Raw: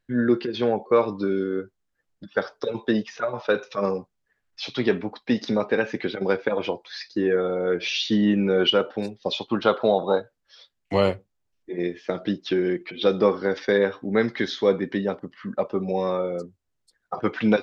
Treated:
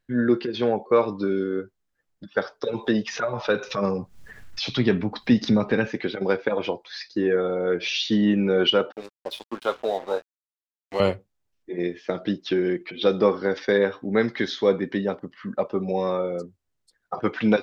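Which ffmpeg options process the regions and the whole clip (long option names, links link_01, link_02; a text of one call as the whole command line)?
ffmpeg -i in.wav -filter_complex "[0:a]asettb=1/sr,asplit=3[link_01][link_02][link_03];[link_01]atrim=end=2.734[link_04];[link_02]atrim=start=2.73:end=5.88,asetpts=PTS-STARTPTS,afade=type=in:duration=0.004:curve=qsin,afade=type=out:start_time=3.146:duration=0.004:curve=qsin,asubboost=boost=4.5:cutoff=240,acompressor=mode=upward:threshold=-21dB:ratio=2.5:attack=3.2:release=140:knee=2.83:detection=peak[link_05];[link_03]atrim=start=5.876[link_06];[link_04][link_05]acrossfade=duration=0.004:curve1=hsin:curve2=qsin[link_07];[link_07][link_06]acrossfade=duration=0.004:curve1=qsin:curve2=hsin,asettb=1/sr,asplit=3[link_08][link_09][link_10];[link_08]atrim=end=8.924[link_11];[link_09]atrim=start=8.92:end=11,asetpts=PTS-STARTPTS,afade=type=in:duration=0.004:curve=qsin,afade=type=out:start_time=2.076:duration=0.004:curve=qsin,highpass=300,flanger=delay=6.4:depth=3:regen=61:speed=1.1:shape=triangular,aeval=exprs='sgn(val(0))*max(abs(val(0))-0.01,0)':channel_layout=same[link_12];[link_10]atrim=start=10.996[link_13];[link_11][link_12]acrossfade=duration=0.004:curve1=hsin:curve2=qsin[link_14];[link_14][link_13]acrossfade=duration=0.004:curve1=qsin:curve2=hsin" out.wav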